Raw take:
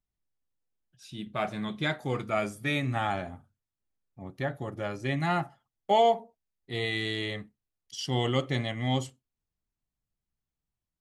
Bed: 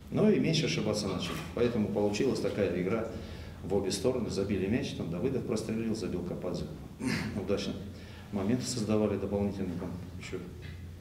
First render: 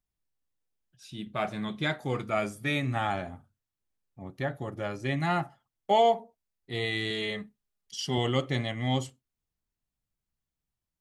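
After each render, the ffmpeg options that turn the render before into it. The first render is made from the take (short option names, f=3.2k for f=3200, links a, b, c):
-filter_complex "[0:a]asettb=1/sr,asplit=3[a][b][c];[a]atrim=end=7.104[d];[b]atrim=start=7.1:end=8.18,asetpts=PTS-STARTPTS,afade=t=in:d=0.004:c=qsin,afade=t=out:st=1.076:d=0.004:c=qsin,aecho=1:1:4.9:0.6,atrim=end_sample=47628[e];[c]atrim=start=8.176[f];[d][e]acrossfade=d=0.004:c1=hsin:c2=qsin[g];[g][f]acrossfade=d=0.004:c1=qsin:c2=hsin"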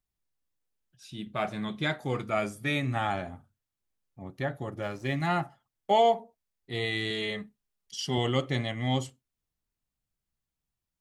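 -filter_complex "[0:a]asettb=1/sr,asplit=3[a][b][c];[a]atrim=end=4.824[d];[b]atrim=start=4.82:end=5.27,asetpts=PTS-STARTPTS,afade=t=in:d=0.004:c=qsin,afade=t=out:st=0.446:d=0.004:c=qsin,aeval=exprs='sgn(val(0))*max(abs(val(0))-0.00266,0)':c=same[e];[c]atrim=start=5.266[f];[d][e]acrossfade=d=0.004:c1=hsin:c2=qsin[g];[g][f]acrossfade=d=0.004:c1=qsin:c2=hsin"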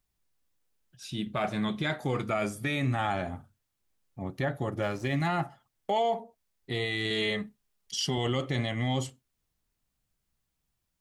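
-filter_complex "[0:a]asplit=2[a][b];[b]acompressor=threshold=-36dB:ratio=6,volume=1dB[c];[a][c]amix=inputs=2:normalize=0,alimiter=limit=-19.5dB:level=0:latency=1:release=14"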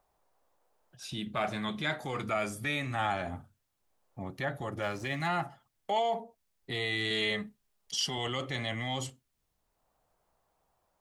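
-filter_complex "[0:a]acrossover=split=660|780[a][b][c];[a]alimiter=level_in=7.5dB:limit=-24dB:level=0:latency=1,volume=-7.5dB[d];[b]acompressor=mode=upward:threshold=-55dB:ratio=2.5[e];[d][e][c]amix=inputs=3:normalize=0"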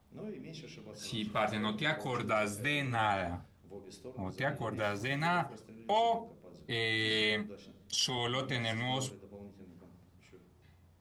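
-filter_complex "[1:a]volume=-19dB[a];[0:a][a]amix=inputs=2:normalize=0"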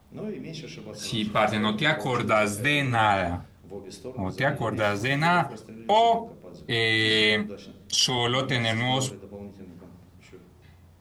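-af "volume=9.5dB"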